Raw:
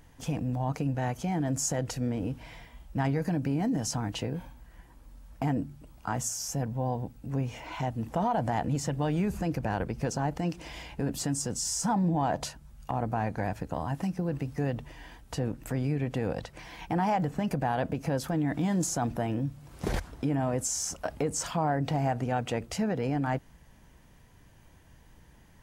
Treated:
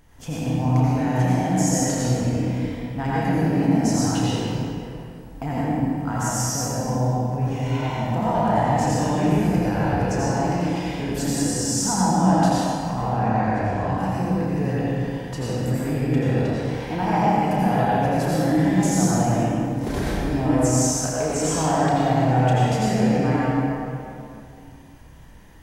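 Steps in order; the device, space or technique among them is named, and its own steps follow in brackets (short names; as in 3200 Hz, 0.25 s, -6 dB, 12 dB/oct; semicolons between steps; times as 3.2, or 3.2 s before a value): 12.91–13.98 LPF 7400 Hz 12 dB/oct; tunnel (flutter echo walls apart 5.5 m, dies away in 0.25 s; reverb RT60 2.5 s, pre-delay 77 ms, DRR -7.5 dB)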